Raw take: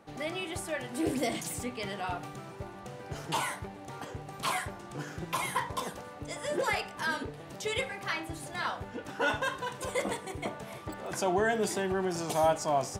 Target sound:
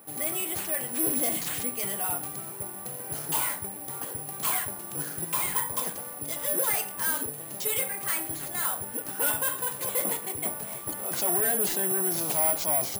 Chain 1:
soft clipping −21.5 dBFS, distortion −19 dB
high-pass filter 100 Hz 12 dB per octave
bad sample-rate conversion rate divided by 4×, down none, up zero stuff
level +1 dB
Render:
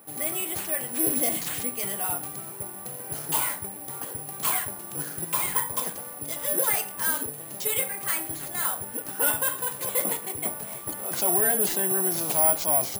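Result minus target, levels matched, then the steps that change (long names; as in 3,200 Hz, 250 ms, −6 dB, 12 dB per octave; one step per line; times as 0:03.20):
soft clipping: distortion −8 dB
change: soft clipping −28 dBFS, distortion −11 dB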